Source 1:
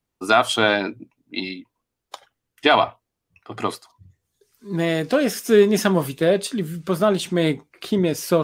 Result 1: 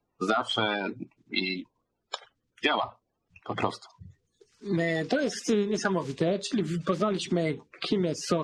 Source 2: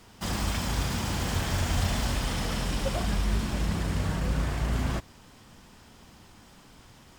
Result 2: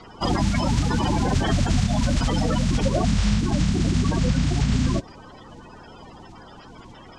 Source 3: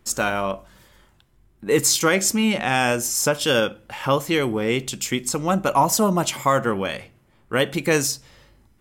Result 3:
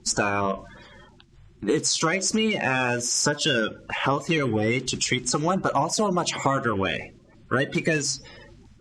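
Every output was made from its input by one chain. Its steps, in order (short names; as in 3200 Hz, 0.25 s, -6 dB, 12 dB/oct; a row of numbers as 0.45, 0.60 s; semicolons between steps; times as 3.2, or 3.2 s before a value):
bin magnitudes rounded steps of 30 dB; LPF 7100 Hz 24 dB/oct; compressor 6:1, threshold -26 dBFS; normalise peaks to -9 dBFS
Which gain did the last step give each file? +2.5, +10.0, +6.0 dB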